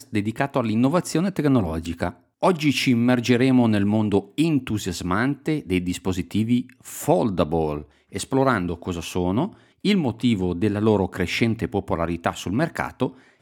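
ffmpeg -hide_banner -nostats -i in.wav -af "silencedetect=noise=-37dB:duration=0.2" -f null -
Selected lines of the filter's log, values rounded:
silence_start: 2.13
silence_end: 2.43 | silence_duration: 0.30
silence_start: 7.84
silence_end: 8.12 | silence_duration: 0.28
silence_start: 9.53
silence_end: 9.84 | silence_duration: 0.32
silence_start: 13.11
silence_end: 13.42 | silence_duration: 0.30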